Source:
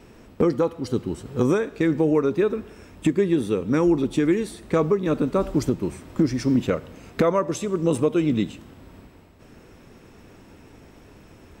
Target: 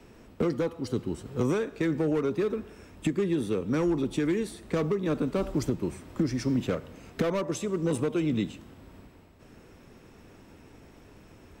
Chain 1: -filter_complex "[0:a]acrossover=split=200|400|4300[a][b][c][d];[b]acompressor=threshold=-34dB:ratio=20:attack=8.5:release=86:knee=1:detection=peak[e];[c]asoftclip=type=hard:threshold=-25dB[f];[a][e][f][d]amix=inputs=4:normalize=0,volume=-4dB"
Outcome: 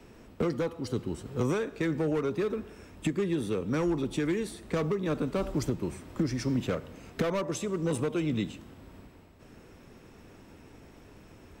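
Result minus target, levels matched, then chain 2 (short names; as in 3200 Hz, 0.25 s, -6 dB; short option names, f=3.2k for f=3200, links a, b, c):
compressor: peak gain reduction +7 dB
-filter_complex "[0:a]acrossover=split=200|400|4300[a][b][c][d];[b]acompressor=threshold=-26.5dB:ratio=20:attack=8.5:release=86:knee=1:detection=peak[e];[c]asoftclip=type=hard:threshold=-25dB[f];[a][e][f][d]amix=inputs=4:normalize=0,volume=-4dB"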